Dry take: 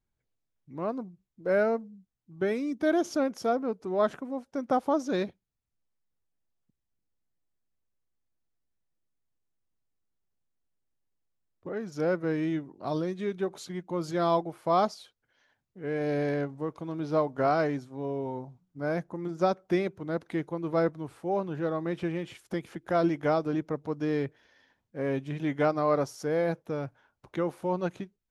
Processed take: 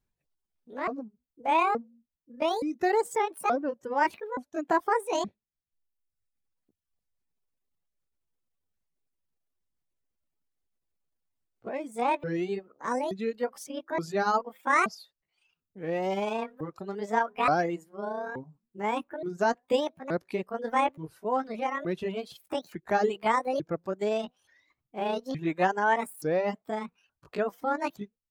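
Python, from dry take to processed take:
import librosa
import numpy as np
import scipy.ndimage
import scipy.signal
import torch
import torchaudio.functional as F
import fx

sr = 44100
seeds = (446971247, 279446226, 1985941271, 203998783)

y = fx.pitch_ramps(x, sr, semitones=10.5, every_ms=874)
y = fx.dereverb_blind(y, sr, rt60_s=1.0)
y = F.gain(torch.from_numpy(y), 2.0).numpy()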